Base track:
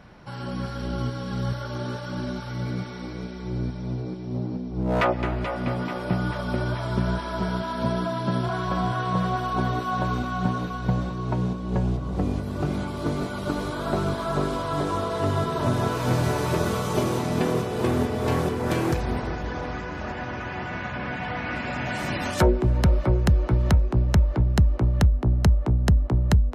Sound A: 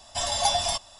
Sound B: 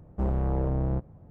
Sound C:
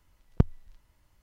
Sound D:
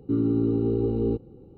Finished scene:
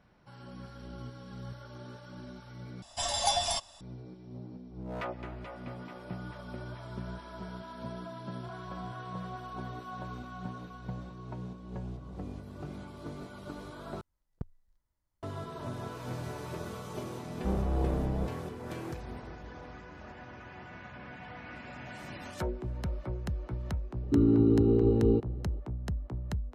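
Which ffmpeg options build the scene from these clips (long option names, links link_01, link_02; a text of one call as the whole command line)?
ffmpeg -i bed.wav -i cue0.wav -i cue1.wav -i cue2.wav -i cue3.wav -filter_complex "[0:a]volume=-15.5dB[link_01];[3:a]equalizer=frequency=2700:width=2.1:gain=-9[link_02];[2:a]flanger=delay=18:depth=2.6:speed=1.8[link_03];[link_01]asplit=3[link_04][link_05][link_06];[link_04]atrim=end=2.824[link_07];[1:a]atrim=end=0.99,asetpts=PTS-STARTPTS,volume=-4.5dB[link_08];[link_05]atrim=start=3.806:end=14.014[link_09];[link_02]atrim=end=1.22,asetpts=PTS-STARTPTS,volume=-17.5dB[link_10];[link_06]atrim=start=15.226[link_11];[link_03]atrim=end=1.3,asetpts=PTS-STARTPTS,afade=type=in:duration=0.004:curve=hsin,afade=type=out:start_time=1.296:duration=0.004:curve=hsin,adelay=17260[link_12];[4:a]atrim=end=1.57,asetpts=PTS-STARTPTS,afade=type=in:duration=0.004:curve=hsin,afade=type=out:start_time=1.566:duration=0.004:curve=hsin,adelay=24030[link_13];[link_07][link_08]acrossfade=duration=0.004:curve1=hsin:curve2=hsin[link_14];[link_14][link_09]acrossfade=duration=0.004:curve1=hsin:curve2=hsin[link_15];[link_15][link_10]acrossfade=duration=0.004:curve1=hsin:curve2=hsin[link_16];[link_16][link_11]acrossfade=duration=0.004:curve1=hsin:curve2=hsin[link_17];[link_17][link_12][link_13]amix=inputs=3:normalize=0" out.wav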